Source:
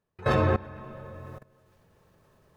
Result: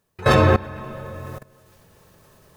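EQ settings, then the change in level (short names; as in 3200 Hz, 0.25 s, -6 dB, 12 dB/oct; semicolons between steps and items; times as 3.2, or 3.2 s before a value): high shelf 3800 Hz +10 dB; +8.0 dB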